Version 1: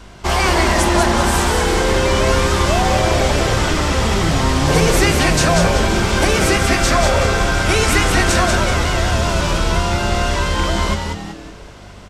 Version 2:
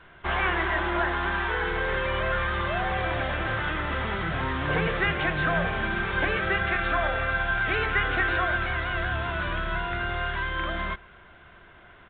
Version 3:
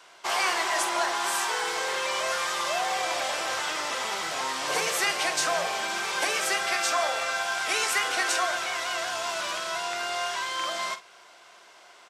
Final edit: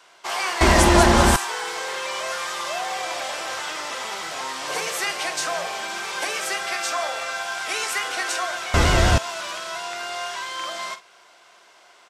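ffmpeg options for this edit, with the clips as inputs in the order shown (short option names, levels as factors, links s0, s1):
-filter_complex "[0:a]asplit=2[s0][s1];[2:a]asplit=3[s2][s3][s4];[s2]atrim=end=0.612[s5];[s0]atrim=start=0.608:end=1.362[s6];[s3]atrim=start=1.358:end=8.742[s7];[s1]atrim=start=8.738:end=9.182[s8];[s4]atrim=start=9.178[s9];[s5][s6]acrossfade=d=0.004:c1=hsin:c2=hsin[s10];[s10][s7]acrossfade=d=0.004:c1=hsin:c2=hsin[s11];[s11][s8]acrossfade=d=0.004:c1=hsin:c2=hsin[s12];[s12][s9]acrossfade=d=0.004:c1=hsin:c2=hsin"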